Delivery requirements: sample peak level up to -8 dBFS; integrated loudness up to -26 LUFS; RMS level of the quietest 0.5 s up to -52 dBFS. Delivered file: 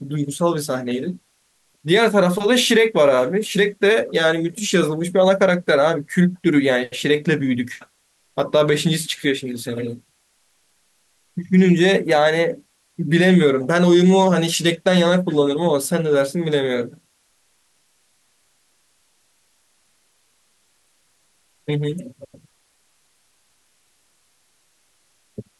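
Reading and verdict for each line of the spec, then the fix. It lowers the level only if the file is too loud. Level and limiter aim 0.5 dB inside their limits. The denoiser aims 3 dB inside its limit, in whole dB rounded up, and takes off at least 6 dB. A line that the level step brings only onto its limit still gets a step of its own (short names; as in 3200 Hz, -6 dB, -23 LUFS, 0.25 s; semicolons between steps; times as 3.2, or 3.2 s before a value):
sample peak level -5.5 dBFS: fail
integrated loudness -18.0 LUFS: fail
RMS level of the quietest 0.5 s -63 dBFS: OK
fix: gain -8.5 dB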